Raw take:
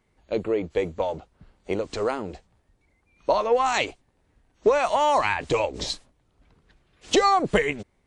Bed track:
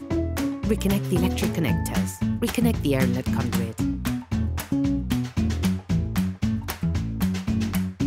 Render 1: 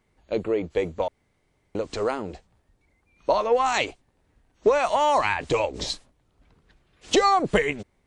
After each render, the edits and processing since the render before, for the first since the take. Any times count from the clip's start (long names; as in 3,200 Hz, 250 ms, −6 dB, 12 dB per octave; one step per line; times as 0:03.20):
0:01.08–0:01.75: fill with room tone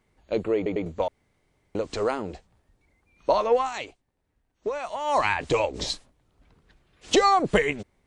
0:00.56: stutter in place 0.10 s, 3 plays
0:03.55–0:05.19: duck −10 dB, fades 0.15 s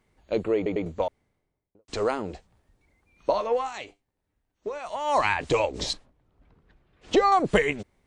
0:00.90–0:01.88: fade out and dull
0:03.30–0:04.86: tuned comb filter 100 Hz, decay 0.23 s, mix 50%
0:05.93–0:07.32: low-pass filter 1,700 Hz 6 dB per octave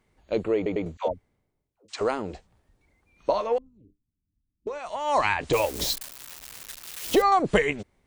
0:00.97–0:02.01: all-pass dispersion lows, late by 111 ms, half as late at 470 Hz
0:03.58–0:04.67: inverse Chebyshev low-pass filter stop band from 690 Hz, stop band 50 dB
0:05.53–0:07.22: spike at every zero crossing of −24 dBFS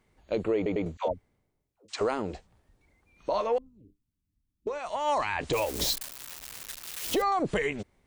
brickwall limiter −19 dBFS, peak gain reduction 9.5 dB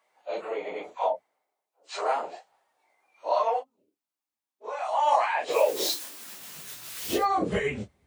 random phases in long frames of 100 ms
high-pass filter sweep 740 Hz → 75 Hz, 0:05.33–0:07.19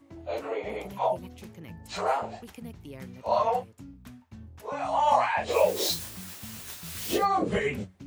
mix in bed track −21 dB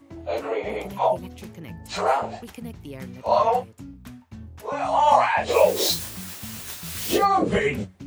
level +5.5 dB